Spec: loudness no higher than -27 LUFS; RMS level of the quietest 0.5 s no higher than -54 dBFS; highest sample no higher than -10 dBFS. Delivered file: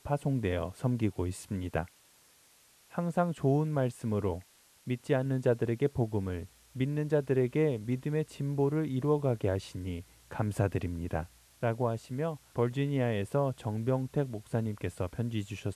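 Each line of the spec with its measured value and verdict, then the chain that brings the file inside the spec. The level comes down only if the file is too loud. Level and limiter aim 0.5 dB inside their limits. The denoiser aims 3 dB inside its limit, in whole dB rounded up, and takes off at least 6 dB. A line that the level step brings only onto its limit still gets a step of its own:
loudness -32.5 LUFS: pass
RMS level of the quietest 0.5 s -63 dBFS: pass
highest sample -16.0 dBFS: pass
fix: none needed

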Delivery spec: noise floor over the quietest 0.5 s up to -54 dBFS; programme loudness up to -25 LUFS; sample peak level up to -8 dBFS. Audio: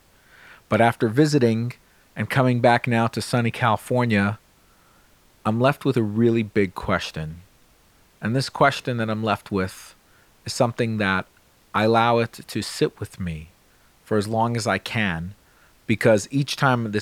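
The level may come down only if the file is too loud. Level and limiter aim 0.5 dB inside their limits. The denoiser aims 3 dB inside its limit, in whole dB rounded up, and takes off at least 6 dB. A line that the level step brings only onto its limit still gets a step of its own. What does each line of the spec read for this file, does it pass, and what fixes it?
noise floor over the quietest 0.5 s -57 dBFS: pass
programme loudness -22.0 LUFS: fail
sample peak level -4.5 dBFS: fail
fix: trim -3.5 dB; peak limiter -8.5 dBFS

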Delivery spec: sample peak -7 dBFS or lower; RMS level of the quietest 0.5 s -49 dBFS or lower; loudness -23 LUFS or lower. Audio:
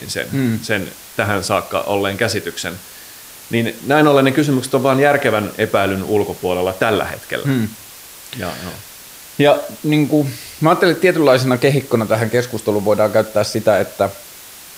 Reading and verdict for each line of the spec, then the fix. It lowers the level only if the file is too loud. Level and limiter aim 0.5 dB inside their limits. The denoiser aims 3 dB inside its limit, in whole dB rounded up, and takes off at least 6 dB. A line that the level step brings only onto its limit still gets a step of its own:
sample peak -1.0 dBFS: fail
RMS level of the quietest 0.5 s -38 dBFS: fail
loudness -16.5 LUFS: fail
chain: noise reduction 7 dB, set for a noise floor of -38 dBFS; trim -7 dB

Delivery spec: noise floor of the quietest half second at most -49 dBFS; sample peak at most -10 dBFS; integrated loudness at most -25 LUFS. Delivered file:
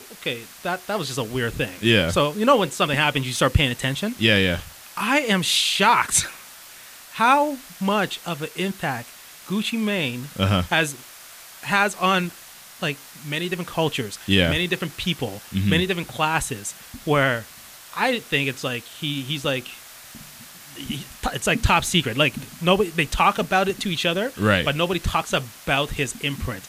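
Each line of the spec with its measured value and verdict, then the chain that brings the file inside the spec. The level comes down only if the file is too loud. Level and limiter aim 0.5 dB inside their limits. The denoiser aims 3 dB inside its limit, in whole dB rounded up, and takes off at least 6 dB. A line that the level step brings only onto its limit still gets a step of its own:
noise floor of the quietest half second -44 dBFS: fail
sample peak -4.5 dBFS: fail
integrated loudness -22.0 LUFS: fail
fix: noise reduction 6 dB, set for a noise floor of -44 dBFS; trim -3.5 dB; peak limiter -10.5 dBFS

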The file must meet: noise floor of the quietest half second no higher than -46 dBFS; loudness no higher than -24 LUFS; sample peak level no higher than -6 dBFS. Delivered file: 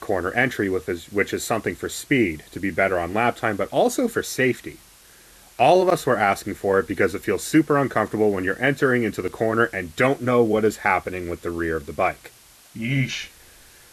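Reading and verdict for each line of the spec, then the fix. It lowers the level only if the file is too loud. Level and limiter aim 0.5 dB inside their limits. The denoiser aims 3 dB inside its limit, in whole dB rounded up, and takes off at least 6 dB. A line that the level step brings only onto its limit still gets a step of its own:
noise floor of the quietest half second -50 dBFS: pass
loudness -22.0 LUFS: fail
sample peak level -5.5 dBFS: fail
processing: trim -2.5 dB

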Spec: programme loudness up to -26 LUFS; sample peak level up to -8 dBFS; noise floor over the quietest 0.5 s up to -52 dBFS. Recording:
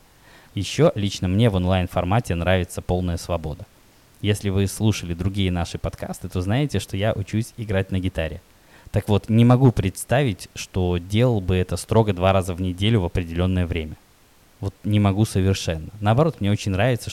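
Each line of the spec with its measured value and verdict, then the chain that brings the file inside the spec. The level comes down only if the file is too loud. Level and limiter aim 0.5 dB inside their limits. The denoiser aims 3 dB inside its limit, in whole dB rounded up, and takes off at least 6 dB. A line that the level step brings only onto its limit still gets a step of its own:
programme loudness -22.0 LUFS: fail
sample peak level -5.5 dBFS: fail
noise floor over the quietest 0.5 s -54 dBFS: pass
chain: trim -4.5 dB

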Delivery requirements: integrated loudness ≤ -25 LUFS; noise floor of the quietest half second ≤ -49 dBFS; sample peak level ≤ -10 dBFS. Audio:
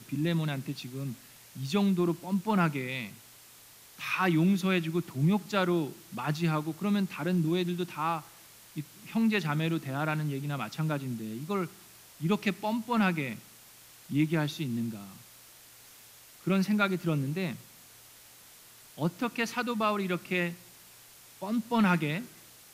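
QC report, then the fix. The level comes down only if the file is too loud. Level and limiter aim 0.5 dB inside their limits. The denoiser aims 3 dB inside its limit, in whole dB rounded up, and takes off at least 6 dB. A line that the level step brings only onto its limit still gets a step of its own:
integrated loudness -30.5 LUFS: pass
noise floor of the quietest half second -54 dBFS: pass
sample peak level -13.0 dBFS: pass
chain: none needed

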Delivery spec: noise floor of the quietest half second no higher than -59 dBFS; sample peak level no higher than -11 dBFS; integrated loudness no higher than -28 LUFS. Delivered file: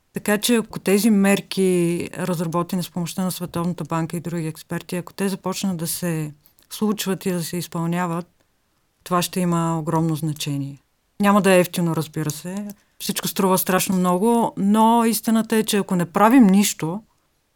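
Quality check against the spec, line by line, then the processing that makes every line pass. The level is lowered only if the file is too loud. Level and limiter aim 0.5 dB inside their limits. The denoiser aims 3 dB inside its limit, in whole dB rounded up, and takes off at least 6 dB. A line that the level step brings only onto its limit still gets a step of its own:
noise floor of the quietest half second -66 dBFS: pass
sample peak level -3.5 dBFS: fail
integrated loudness -21.0 LUFS: fail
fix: trim -7.5 dB; peak limiter -11.5 dBFS

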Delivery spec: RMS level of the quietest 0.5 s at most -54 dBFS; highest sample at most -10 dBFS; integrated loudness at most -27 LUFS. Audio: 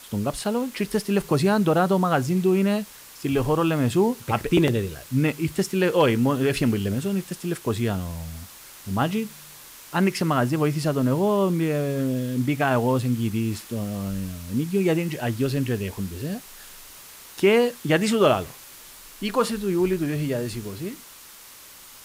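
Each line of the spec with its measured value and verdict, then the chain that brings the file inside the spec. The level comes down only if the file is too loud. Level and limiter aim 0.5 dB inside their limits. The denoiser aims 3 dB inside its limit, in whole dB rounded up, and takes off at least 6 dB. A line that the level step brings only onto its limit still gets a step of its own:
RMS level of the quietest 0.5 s -46 dBFS: fail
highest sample -7.0 dBFS: fail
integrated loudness -23.5 LUFS: fail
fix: noise reduction 7 dB, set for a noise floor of -46 dBFS; trim -4 dB

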